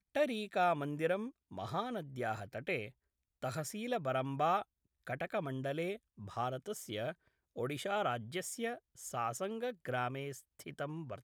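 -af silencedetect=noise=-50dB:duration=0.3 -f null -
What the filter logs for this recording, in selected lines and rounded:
silence_start: 2.90
silence_end: 3.42 | silence_duration: 0.53
silence_start: 4.63
silence_end: 5.07 | silence_duration: 0.44
silence_start: 7.12
silence_end: 7.56 | silence_duration: 0.44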